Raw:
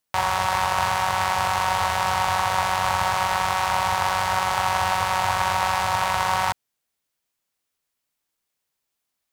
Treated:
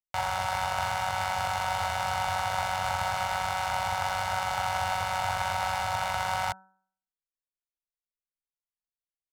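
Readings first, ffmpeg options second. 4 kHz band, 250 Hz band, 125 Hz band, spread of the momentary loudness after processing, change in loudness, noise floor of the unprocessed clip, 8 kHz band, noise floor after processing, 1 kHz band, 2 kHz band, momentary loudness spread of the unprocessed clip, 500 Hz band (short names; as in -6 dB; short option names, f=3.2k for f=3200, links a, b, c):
-7.0 dB, -9.0 dB, -5.5 dB, 1 LU, -7.0 dB, -80 dBFS, -7.5 dB, under -85 dBFS, -7.0 dB, -6.5 dB, 1 LU, -6.0 dB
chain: -af "anlmdn=25.1,aecho=1:1:1.4:0.53,bandreject=f=189.2:t=h:w=4,bandreject=f=378.4:t=h:w=4,bandreject=f=567.6:t=h:w=4,bandreject=f=756.8:t=h:w=4,bandreject=f=946:t=h:w=4,bandreject=f=1.1352k:t=h:w=4,bandreject=f=1.3244k:t=h:w=4,bandreject=f=1.5136k:t=h:w=4,bandreject=f=1.7028k:t=h:w=4,volume=-8dB"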